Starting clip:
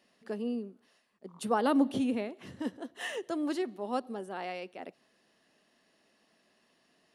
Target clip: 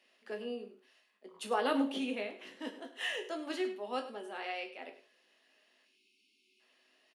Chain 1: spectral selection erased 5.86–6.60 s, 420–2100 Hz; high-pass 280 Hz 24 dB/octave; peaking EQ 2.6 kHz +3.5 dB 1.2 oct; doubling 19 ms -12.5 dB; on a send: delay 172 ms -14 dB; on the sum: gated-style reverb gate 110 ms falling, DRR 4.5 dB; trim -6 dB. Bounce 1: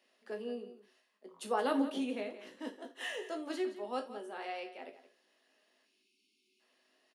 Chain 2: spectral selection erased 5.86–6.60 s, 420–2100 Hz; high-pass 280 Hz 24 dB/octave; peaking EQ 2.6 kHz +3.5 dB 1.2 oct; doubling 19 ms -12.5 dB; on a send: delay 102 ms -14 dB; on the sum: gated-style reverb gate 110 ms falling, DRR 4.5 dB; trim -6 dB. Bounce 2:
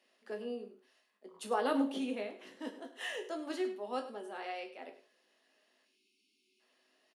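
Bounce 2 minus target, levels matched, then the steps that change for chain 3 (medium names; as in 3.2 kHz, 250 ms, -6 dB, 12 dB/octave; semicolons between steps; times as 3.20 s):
2 kHz band -3.0 dB
change: peaking EQ 2.6 kHz +9.5 dB 1.2 oct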